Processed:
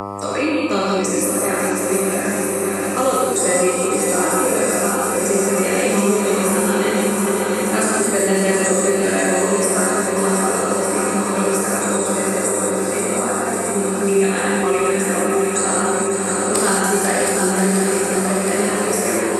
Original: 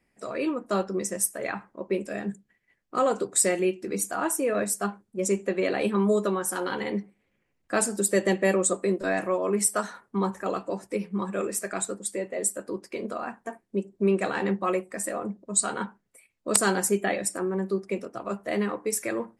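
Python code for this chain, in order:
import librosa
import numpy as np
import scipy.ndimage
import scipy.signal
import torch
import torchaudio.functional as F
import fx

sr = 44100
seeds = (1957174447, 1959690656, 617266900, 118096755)

y = fx.reverse_delay_fb(x, sr, ms=271, feedback_pct=74, wet_db=-7.5)
y = fx.echo_swing(y, sr, ms=1202, ratio=1.5, feedback_pct=50, wet_db=-8.0)
y = fx.rev_gated(y, sr, seeds[0], gate_ms=240, shape='flat', drr_db=-6.5)
y = fx.dmg_buzz(y, sr, base_hz=100.0, harmonics=13, level_db=-38.0, tilt_db=-1, odd_only=False)
y = fx.band_squash(y, sr, depth_pct=70)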